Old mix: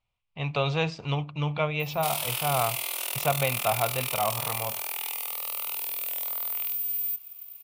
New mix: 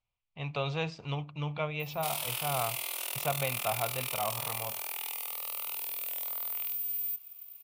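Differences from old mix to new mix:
speech -6.5 dB; background -4.5 dB

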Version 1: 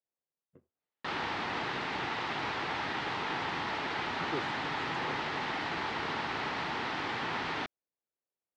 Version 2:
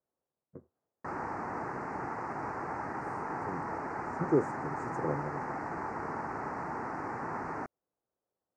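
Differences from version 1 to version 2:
speech +11.5 dB; master: add Butterworth band-stop 3400 Hz, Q 0.52

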